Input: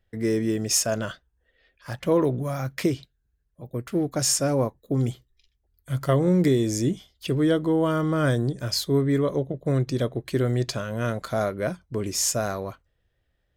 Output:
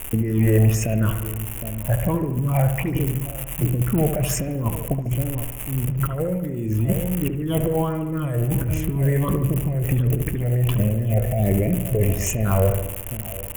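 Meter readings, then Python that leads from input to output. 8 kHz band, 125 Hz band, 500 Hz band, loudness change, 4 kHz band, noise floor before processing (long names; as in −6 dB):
−3.5 dB, +8.0 dB, −0.5 dB, +2.5 dB, −7.5 dB, −73 dBFS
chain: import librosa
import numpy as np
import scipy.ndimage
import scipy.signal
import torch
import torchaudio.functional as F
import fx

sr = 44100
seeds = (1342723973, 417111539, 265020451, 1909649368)

p1 = fx.law_mismatch(x, sr, coded='mu')
p2 = fx.spec_erase(p1, sr, start_s=10.74, length_s=1.71, low_hz=770.0, high_hz=1700.0)
p3 = p2 + 10.0 ** (-18.0 / 20.0) * np.pad(p2, (int(762 * sr / 1000.0), 0))[:len(p2)]
p4 = fx.env_lowpass(p3, sr, base_hz=640.0, full_db=-15.5)
p5 = fx.phaser_stages(p4, sr, stages=6, low_hz=260.0, high_hz=1200.0, hz=1.4, feedback_pct=40)
p6 = fx.dmg_crackle(p5, sr, seeds[0], per_s=230.0, level_db=-31.0)
p7 = fx.low_shelf(p6, sr, hz=89.0, db=10.0)
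p8 = fx.over_compress(p7, sr, threshold_db=-30.0, ratio=-1.0)
p9 = fx.curve_eq(p8, sr, hz=(370.0, 910.0, 1500.0, 2800.0, 4300.0, 6600.0, 11000.0), db=(0, -3, -8, 1, -27, -8, 9))
p10 = p9 + fx.echo_wet_lowpass(p9, sr, ms=73, feedback_pct=60, hz=2100.0, wet_db=-8.0, dry=0)
y = F.gain(torch.from_numpy(p10), 8.5).numpy()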